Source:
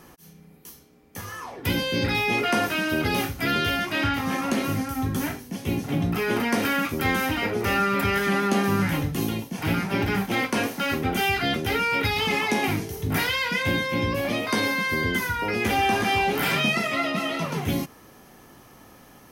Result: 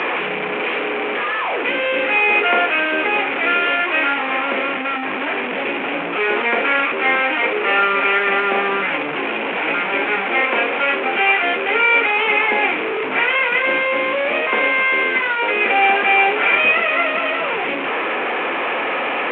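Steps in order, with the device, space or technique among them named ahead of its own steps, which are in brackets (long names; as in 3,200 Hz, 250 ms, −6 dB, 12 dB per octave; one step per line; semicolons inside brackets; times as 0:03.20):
digital answering machine (band-pass filter 310–3,300 Hz; linear delta modulator 16 kbit/s, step −22.5 dBFS; loudspeaker in its box 360–4,200 Hz, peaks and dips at 490 Hz +4 dB, 2,400 Hz +7 dB, 4,000 Hz −4 dB)
level +7 dB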